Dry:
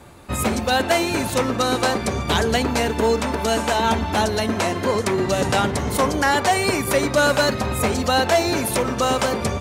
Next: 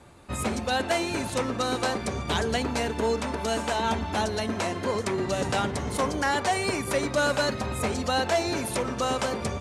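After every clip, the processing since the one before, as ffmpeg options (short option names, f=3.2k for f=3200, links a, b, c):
-af "lowpass=f=11k:w=0.5412,lowpass=f=11k:w=1.3066,volume=-7dB"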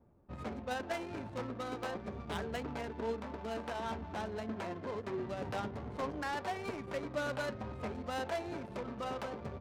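-af "flanger=delay=4.2:depth=5.9:regen=73:speed=0.45:shape=triangular,adynamicsmooth=sensitivity=5:basefreq=580,volume=-7.5dB"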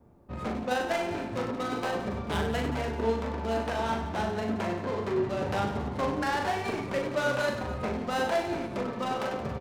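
-filter_complex "[0:a]acrossover=split=580|5000[a][b][c];[c]acrusher=bits=3:mode=log:mix=0:aa=0.000001[d];[a][b][d]amix=inputs=3:normalize=0,aecho=1:1:40|96|174.4|284.2|437.8:0.631|0.398|0.251|0.158|0.1,volume=7dB"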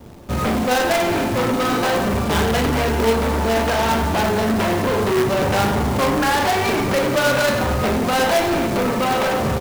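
-filter_complex "[0:a]acrusher=bits=2:mode=log:mix=0:aa=0.000001,asplit=2[a][b];[b]aeval=exprs='0.133*sin(PI/2*4.47*val(0)/0.133)':c=same,volume=-11dB[c];[a][c]amix=inputs=2:normalize=0,volume=7.5dB"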